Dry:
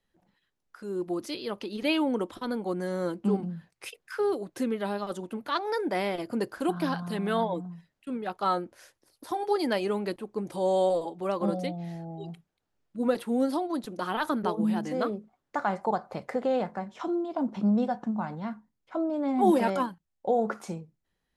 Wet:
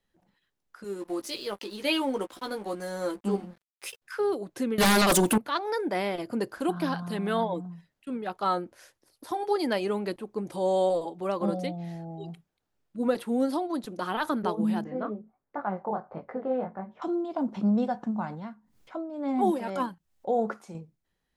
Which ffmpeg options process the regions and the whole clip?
-filter_complex "[0:a]asettb=1/sr,asplit=3[a][b][c];[a]atrim=end=0.844[d];[b]atrim=start=0.84:end=4.02,asetpts=PTS-STARTPTS,afade=t=in:d=0.004:c=qsin,afade=t=out:st=3.176:d=0.004:c=qsin,bass=f=250:g=-9,treble=f=4k:g=6,asplit=2[e][f];[f]adelay=15,volume=-5dB[g];[e][g]amix=inputs=2:normalize=0,atrim=end_sample=140238,aeval=exprs='sgn(val(0))*max(abs(val(0))-0.00299,0)':c=same[h];[c]atrim=start=4.016[i];[d][h]acrossfade=d=0.004:c1=hsin:c2=qsin[j];[j][i]acrossfade=d=0.004:c1=qsin:c2=hsin,asettb=1/sr,asplit=3[k][l][m];[k]atrim=end=4.784[n];[l]atrim=start=4.78:end=5.38,asetpts=PTS-STARTPTS,afade=t=in:d=0.004:c=qsin,afade=t=out:st=0.596:d=0.004:c=qsin,aemphasis=mode=production:type=75kf,aeval=exprs='0.141*sin(PI/2*5.01*val(0)/0.141)':c=same[o];[m]atrim=start=5.376[p];[n][o]acrossfade=d=0.004:c1=hsin:c2=qsin[q];[q][p]acrossfade=d=0.004:c1=qsin:c2=hsin,asettb=1/sr,asplit=3[r][s][t];[r]atrim=end=14.844[u];[s]atrim=start=14.84:end=17.02,asetpts=PTS-STARTPTS,afade=t=in:d=0.004:c=qsin,afade=t=out:st=2.176:d=0.004:c=qsin,lowpass=1.5k,flanger=delay=17.5:depth=6.9:speed=1.4[v];[t]atrim=start=17.016[w];[u][v]acrossfade=d=0.004:c1=hsin:c2=qsin[x];[x][w]acrossfade=d=0.004:c1=qsin:c2=hsin,asettb=1/sr,asplit=3[y][z][aa];[y]atrim=end=18.304[ab];[z]atrim=start=18.3:end=20.75,asetpts=PTS-STARTPTS,afade=t=in:d=0.004:c=qsin,afade=t=out:st=2.446:d=0.004:c=qsin,acompressor=mode=upward:threshold=-45dB:ratio=2.5:attack=3.2:release=140:knee=2.83:detection=peak,tremolo=f=1.9:d=0.65[ac];[aa]atrim=start=20.746[ad];[ab][ac]acrossfade=d=0.004:c1=hsin:c2=qsin[ae];[ae][ad]acrossfade=d=0.004:c1=qsin:c2=hsin"

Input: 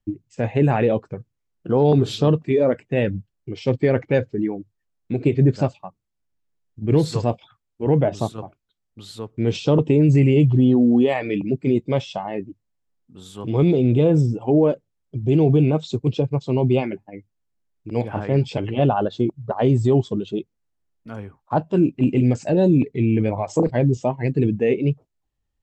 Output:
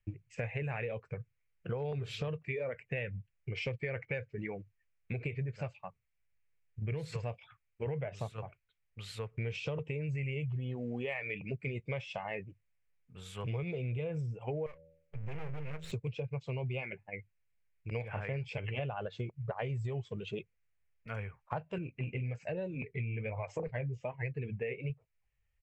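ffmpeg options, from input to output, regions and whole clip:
-filter_complex "[0:a]asettb=1/sr,asplit=3[a][b][c];[a]atrim=end=14.664[d];[b]atrim=start=14.66:end=15.92,asetpts=PTS-STARTPTS,afade=t=in:d=0.004:c=qsin,afade=t=out:st=1.256:d=0.004:c=qsin,aeval=exprs='max(val(0),0)':c=same,bandreject=f=81.35:t=h:w=4,bandreject=f=162.7:t=h:w=4,bandreject=f=244.05:t=h:w=4,bandreject=f=325.4:t=h:w=4,bandreject=f=406.75:t=h:w=4,bandreject=f=488.1:t=h:w=4,bandreject=f=569.45:t=h:w=4,acompressor=threshold=-33dB:ratio=2:attack=3.2:release=140:knee=1:detection=peak[e];[c]atrim=start=15.916[f];[d][e]acrossfade=d=0.004:c1=hsin:c2=qsin[g];[g][f]acrossfade=d=0.004:c1=qsin:c2=hsin,asettb=1/sr,asplit=3[h][i][j];[h]atrim=end=21.784[k];[i]atrim=start=21.78:end=24.9,asetpts=PTS-STARTPTS,afade=t=in:d=0.004:c=qsin,afade=t=out:st=3.116:d=0.004:c=qsin,flanger=delay=2:depth=5.4:regen=-58:speed=1.2:shape=sinusoidal,aemphasis=mode=reproduction:type=50fm[l];[j]atrim=start=24.896[m];[k][l]acrossfade=d=0.004:c1=hsin:c2=qsin[n];[n][m]acrossfade=d=0.004:c1=qsin:c2=hsin,firequalizer=gain_entry='entry(120,0);entry(290,-20);entry(460,-2);entry(790,-6);entry(2300,11);entry(3500,-6)':delay=0.05:min_phase=1,acompressor=threshold=-32dB:ratio=10,volume=-2dB"

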